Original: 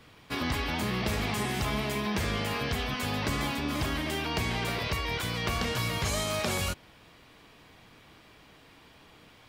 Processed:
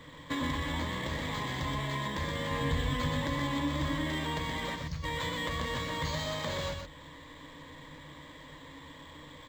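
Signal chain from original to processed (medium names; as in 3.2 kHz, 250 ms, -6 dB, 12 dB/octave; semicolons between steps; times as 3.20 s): compression 5:1, threshold -37 dBFS, peak gain reduction 10.5 dB; 2.51–3.21 s: bass shelf 120 Hz +10.5 dB; 4.76–5.03 s: time-frequency box 240–4200 Hz -18 dB; rippled EQ curve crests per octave 1.1, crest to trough 14 dB; delay 124 ms -5 dB; decimation joined by straight lines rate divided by 4×; trim +3 dB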